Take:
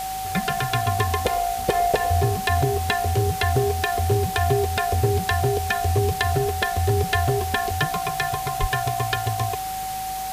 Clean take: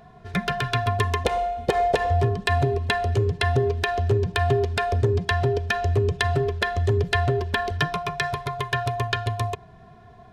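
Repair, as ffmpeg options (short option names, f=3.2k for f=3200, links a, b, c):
-filter_complex "[0:a]bandreject=f=52.1:t=h:w=4,bandreject=f=104.2:t=h:w=4,bandreject=f=156.3:t=h:w=4,bandreject=f=208.4:t=h:w=4,bandreject=f=760:w=30,asplit=3[a][b][c];[a]afade=t=out:st=8.6:d=0.02[d];[b]highpass=f=140:w=0.5412,highpass=f=140:w=1.3066,afade=t=in:st=8.6:d=0.02,afade=t=out:st=8.72:d=0.02[e];[c]afade=t=in:st=8.72:d=0.02[f];[d][e][f]amix=inputs=3:normalize=0,afwtdn=0.018"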